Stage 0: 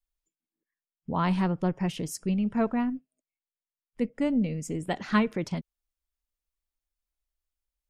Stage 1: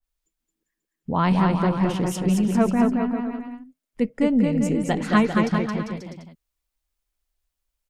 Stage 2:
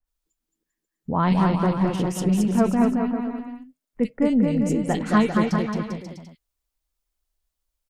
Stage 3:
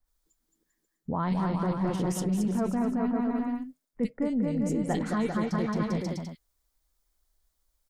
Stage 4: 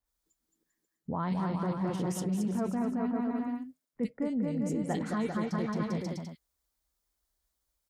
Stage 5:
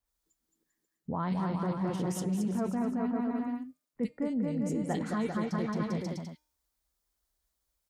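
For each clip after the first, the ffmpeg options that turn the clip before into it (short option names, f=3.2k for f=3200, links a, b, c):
-filter_complex "[0:a]asplit=2[a][b];[b]aecho=0:1:220|396|536.8|649.4|739.6:0.631|0.398|0.251|0.158|0.1[c];[a][c]amix=inputs=2:normalize=0,adynamicequalizer=threshold=0.00794:dfrequency=1900:dqfactor=0.7:tfrequency=1900:tqfactor=0.7:attack=5:release=100:ratio=0.375:range=2:mode=cutabove:tftype=highshelf,volume=5.5dB"
-filter_complex "[0:a]acrossover=split=2200[a][b];[b]adelay=40[c];[a][c]amix=inputs=2:normalize=0"
-af "equalizer=f=2.7k:t=o:w=0.41:g=-7,alimiter=limit=-14dB:level=0:latency=1:release=170,areverse,acompressor=threshold=-31dB:ratio=6,areverse,volume=5.5dB"
-af "highpass=49,volume=-3.5dB"
-af "bandreject=f=303.6:t=h:w=4,bandreject=f=607.2:t=h:w=4,bandreject=f=910.8:t=h:w=4,bandreject=f=1.2144k:t=h:w=4,bandreject=f=1.518k:t=h:w=4,bandreject=f=1.8216k:t=h:w=4,bandreject=f=2.1252k:t=h:w=4,bandreject=f=2.4288k:t=h:w=4,bandreject=f=2.7324k:t=h:w=4,bandreject=f=3.036k:t=h:w=4,bandreject=f=3.3396k:t=h:w=4,bandreject=f=3.6432k:t=h:w=4,bandreject=f=3.9468k:t=h:w=4,bandreject=f=4.2504k:t=h:w=4,bandreject=f=4.554k:t=h:w=4,bandreject=f=4.8576k:t=h:w=4,bandreject=f=5.1612k:t=h:w=4,bandreject=f=5.4648k:t=h:w=4,bandreject=f=5.7684k:t=h:w=4,bandreject=f=6.072k:t=h:w=4,bandreject=f=6.3756k:t=h:w=4,bandreject=f=6.6792k:t=h:w=4,bandreject=f=6.9828k:t=h:w=4,bandreject=f=7.2864k:t=h:w=4,bandreject=f=7.59k:t=h:w=4,bandreject=f=7.8936k:t=h:w=4,bandreject=f=8.1972k:t=h:w=4,bandreject=f=8.5008k:t=h:w=4,bandreject=f=8.8044k:t=h:w=4,bandreject=f=9.108k:t=h:w=4,bandreject=f=9.4116k:t=h:w=4,bandreject=f=9.7152k:t=h:w=4,bandreject=f=10.0188k:t=h:w=4,bandreject=f=10.3224k:t=h:w=4,bandreject=f=10.626k:t=h:w=4,bandreject=f=10.9296k:t=h:w=4"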